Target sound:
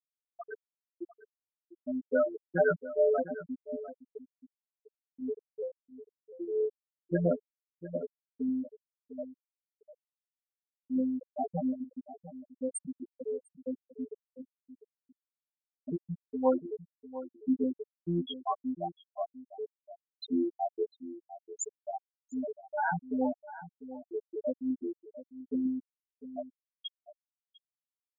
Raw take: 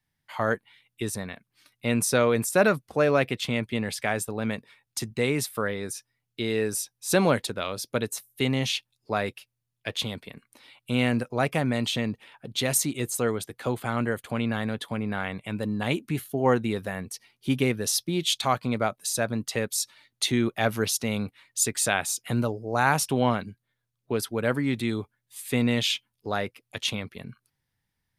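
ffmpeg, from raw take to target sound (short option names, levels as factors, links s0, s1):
-filter_complex "[0:a]afftfilt=real='hypot(re,im)*cos(PI*b)':imag='0':win_size=2048:overlap=0.75,afftfilt=real='re*gte(hypot(re,im),0.251)':imag='im*gte(hypot(re,im),0.251)':win_size=1024:overlap=0.75,asplit=2[s0][s1];[s1]adelay=699.7,volume=0.2,highshelf=f=4000:g=-15.7[s2];[s0][s2]amix=inputs=2:normalize=0"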